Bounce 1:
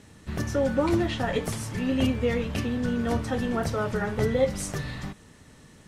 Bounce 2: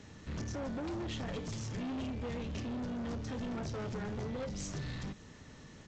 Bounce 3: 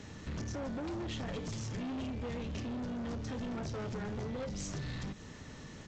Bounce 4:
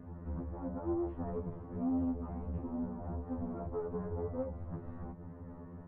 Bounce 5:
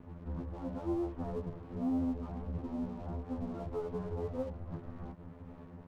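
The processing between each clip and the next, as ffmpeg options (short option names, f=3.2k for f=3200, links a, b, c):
-filter_complex "[0:a]acrossover=split=430|3000[a][b][c];[b]acompressor=threshold=-54dB:ratio=1.5[d];[a][d][c]amix=inputs=3:normalize=0,alimiter=limit=-21dB:level=0:latency=1:release=209,aresample=16000,asoftclip=type=tanh:threshold=-35dB,aresample=44100,volume=-1dB"
-af "acompressor=threshold=-42dB:ratio=6,volume=4.5dB"
-af "lowpass=f=1.1k:w=0.5412,lowpass=f=1.1k:w=1.3066,afftfilt=real='re*2*eq(mod(b,4),0)':imag='im*2*eq(mod(b,4),0)':win_size=2048:overlap=0.75,volume=3dB"
-af "aeval=exprs='sgn(val(0))*max(abs(val(0))-0.00141,0)':c=same,volume=1dB"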